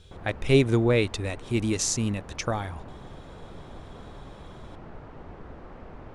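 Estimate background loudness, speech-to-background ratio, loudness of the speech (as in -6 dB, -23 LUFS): -45.5 LUFS, 20.0 dB, -25.5 LUFS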